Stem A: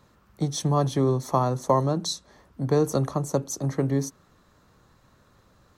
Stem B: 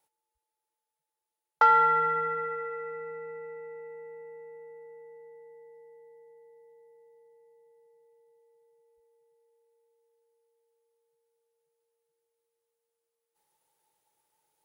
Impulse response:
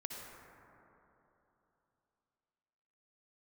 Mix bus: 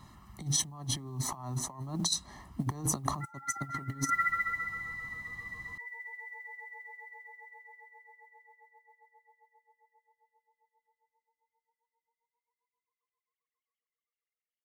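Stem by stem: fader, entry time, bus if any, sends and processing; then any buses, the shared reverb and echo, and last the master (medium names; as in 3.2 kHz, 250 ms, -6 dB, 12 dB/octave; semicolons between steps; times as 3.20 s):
-5.5 dB, 0.00 s, no send, peaking EQ 9.2 kHz +5.5 dB 0.3 oct
-4.5 dB, 1.60 s, no send, formants replaced by sine waves; LFO high-pass sine 7.5 Hz 800–2900 Hz; treble shelf 2.7 kHz +8.5 dB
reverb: none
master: comb 1 ms, depth 89%; compressor with a negative ratio -33 dBFS, ratio -0.5; modulation noise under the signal 33 dB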